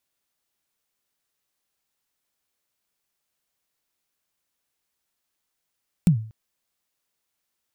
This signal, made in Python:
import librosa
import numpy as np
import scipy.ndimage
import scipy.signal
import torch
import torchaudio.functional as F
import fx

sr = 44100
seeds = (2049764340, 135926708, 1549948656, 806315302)

y = fx.drum_kick(sr, seeds[0], length_s=0.24, level_db=-9.5, start_hz=190.0, end_hz=110.0, sweep_ms=101.0, decay_s=0.44, click=True)